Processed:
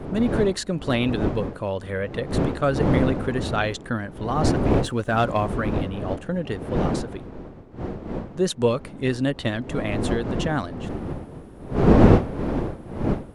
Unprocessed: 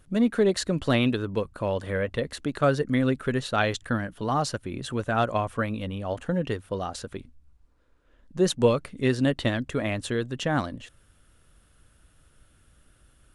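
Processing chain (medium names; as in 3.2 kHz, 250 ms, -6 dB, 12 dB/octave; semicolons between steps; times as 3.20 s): wind noise 350 Hz -25 dBFS; 4.65–5.47 s: waveshaping leveller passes 1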